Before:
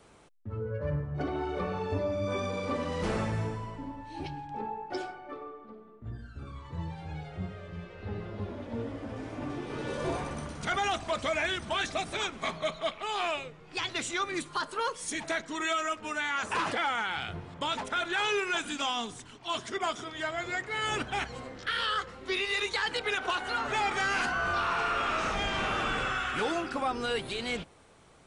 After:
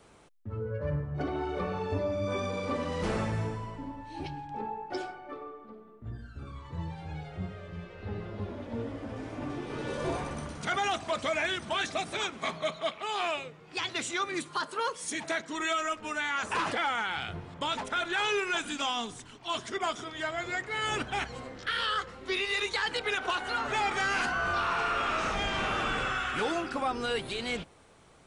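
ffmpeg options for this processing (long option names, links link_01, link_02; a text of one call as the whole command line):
ffmpeg -i in.wav -filter_complex "[0:a]asettb=1/sr,asplit=3[link_01][link_02][link_03];[link_01]atrim=end=10.584[link_04];[link_02]atrim=start=10.58:end=15.53,asetpts=PTS-STARTPTS,afade=type=in:duration=0.004:curve=qsin,afade=type=out:start_time=4.946:duration=0.004:curve=qsin,highpass=100[link_05];[link_03]atrim=start=15.526[link_06];[link_04][link_05]acrossfade=duration=0.004:curve1=hsin:curve2=qsin[link_07];[link_07][link_06]acrossfade=duration=0.004:curve1=qsin:curve2=hsin" out.wav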